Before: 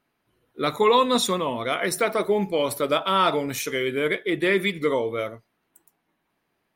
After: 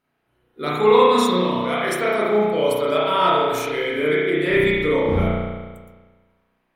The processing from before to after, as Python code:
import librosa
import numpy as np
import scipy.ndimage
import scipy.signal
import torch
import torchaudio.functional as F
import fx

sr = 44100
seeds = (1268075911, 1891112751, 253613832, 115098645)

y = fx.dmg_wind(x, sr, seeds[0], corner_hz=270.0, level_db=-21.0, at=(4.49, 5.24), fade=0.02)
y = fx.rev_spring(y, sr, rt60_s=1.4, pass_ms=(33,), chirp_ms=55, drr_db=-6.5)
y = F.gain(torch.from_numpy(y), -4.0).numpy()